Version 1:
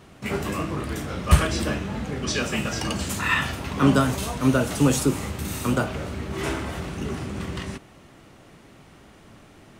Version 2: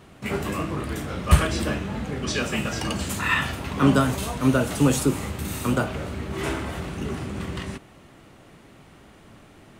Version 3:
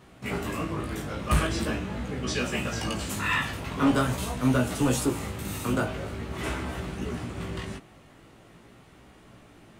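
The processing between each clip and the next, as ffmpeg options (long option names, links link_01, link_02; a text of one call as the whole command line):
ffmpeg -i in.wav -af "equalizer=frequency=5600:width_type=o:width=0.56:gain=-3" out.wav
ffmpeg -i in.wav -af "asoftclip=type=hard:threshold=-13.5dB,flanger=delay=16:depth=3:speed=0.44" out.wav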